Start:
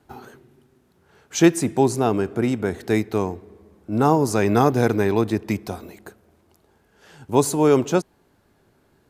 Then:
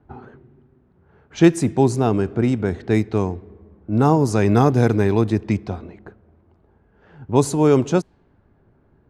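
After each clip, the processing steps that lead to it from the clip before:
low-pass that shuts in the quiet parts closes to 1,600 Hz, open at −15 dBFS
low-pass filter 9,400 Hz 12 dB per octave
low-shelf EQ 180 Hz +10.5 dB
level −1 dB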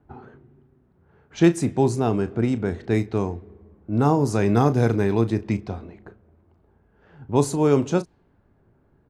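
double-tracking delay 35 ms −12.5 dB
level −3.5 dB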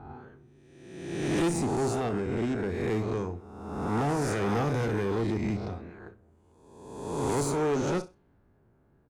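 peak hold with a rise ahead of every peak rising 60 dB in 1.19 s
repeating echo 64 ms, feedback 20%, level −17.5 dB
tube saturation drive 18 dB, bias 0.45
level −4.5 dB

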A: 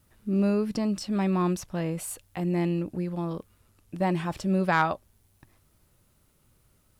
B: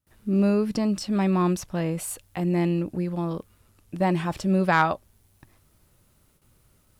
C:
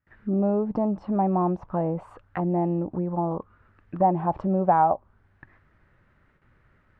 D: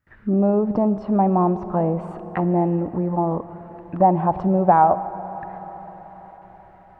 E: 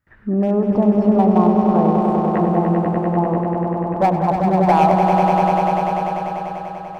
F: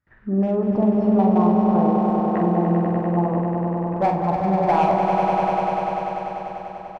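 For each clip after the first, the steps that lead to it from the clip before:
noise gate with hold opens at −55 dBFS; level +3 dB
downward compressor 2 to 1, threshold −24 dBFS, peak gain reduction 5.5 dB; envelope-controlled low-pass 790–1,800 Hz down, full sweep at −24 dBFS
convolution reverb RT60 5.5 s, pre-delay 48 ms, DRR 12.5 dB; level +5 dB
hard clipping −10 dBFS, distortion −19 dB; echo that builds up and dies away 98 ms, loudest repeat 5, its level −6.5 dB
high-frequency loss of the air 57 metres; double-tracking delay 46 ms −5 dB; level −4.5 dB

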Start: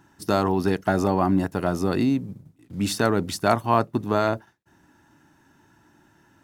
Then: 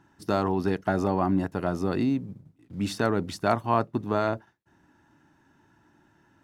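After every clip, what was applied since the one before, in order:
low-pass filter 4,000 Hz 6 dB per octave
level −3.5 dB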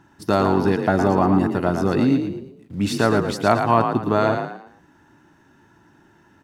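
echo with shifted repeats 113 ms, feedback 34%, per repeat +40 Hz, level −6.5 dB
level +6.5 dB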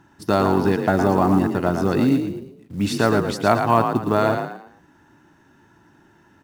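floating-point word with a short mantissa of 4 bits

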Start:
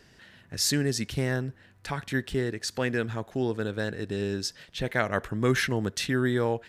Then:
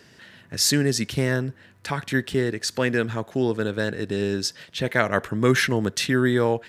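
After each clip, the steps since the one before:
high-pass filter 100 Hz
notch filter 760 Hz, Q 17
level +5.5 dB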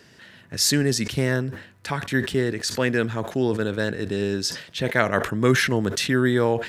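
level that may fall only so fast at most 110 dB per second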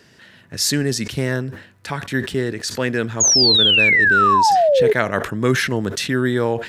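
sound drawn into the spectrogram fall, 0:03.20–0:04.93, 410–6,900 Hz −15 dBFS
level +1 dB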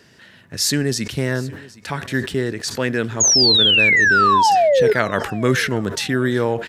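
repeating echo 764 ms, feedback 32%, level −21 dB

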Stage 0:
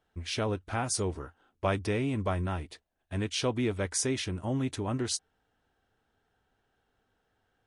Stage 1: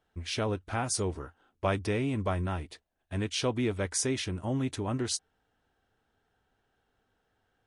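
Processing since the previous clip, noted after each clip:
no processing that can be heard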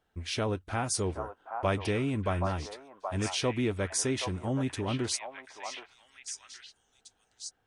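echo through a band-pass that steps 774 ms, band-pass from 870 Hz, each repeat 1.4 octaves, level −1.5 dB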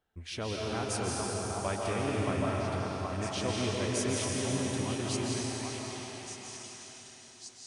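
comb and all-pass reverb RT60 4.5 s, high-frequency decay 1×, pre-delay 110 ms, DRR −4 dB
level −6 dB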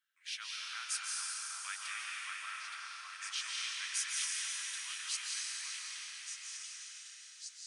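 Butterworth high-pass 1,400 Hz 36 dB per octave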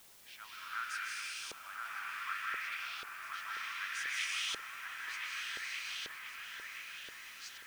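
auto-filter band-pass saw up 0.66 Hz 440–3,300 Hz
delay with a low-pass on its return 1,026 ms, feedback 49%, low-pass 2,900 Hz, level −4 dB
background noise white −68 dBFS
level +8.5 dB

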